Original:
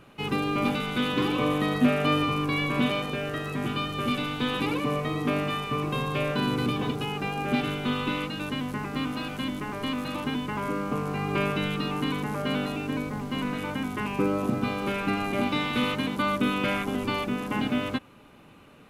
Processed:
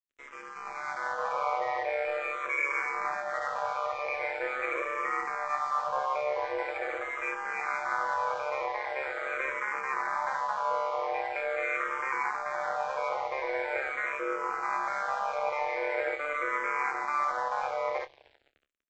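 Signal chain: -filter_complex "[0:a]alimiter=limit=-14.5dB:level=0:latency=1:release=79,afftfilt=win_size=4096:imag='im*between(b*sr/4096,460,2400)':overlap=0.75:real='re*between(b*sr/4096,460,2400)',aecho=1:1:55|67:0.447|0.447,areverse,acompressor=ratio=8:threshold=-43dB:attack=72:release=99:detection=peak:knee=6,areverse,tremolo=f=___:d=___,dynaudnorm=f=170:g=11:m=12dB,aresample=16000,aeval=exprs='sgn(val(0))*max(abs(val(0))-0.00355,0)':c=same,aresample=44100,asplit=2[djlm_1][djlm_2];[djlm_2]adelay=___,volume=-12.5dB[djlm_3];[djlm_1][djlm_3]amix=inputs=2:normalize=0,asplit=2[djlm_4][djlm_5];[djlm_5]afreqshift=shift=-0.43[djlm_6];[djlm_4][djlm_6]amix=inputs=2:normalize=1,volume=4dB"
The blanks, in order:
140, 0.71, 28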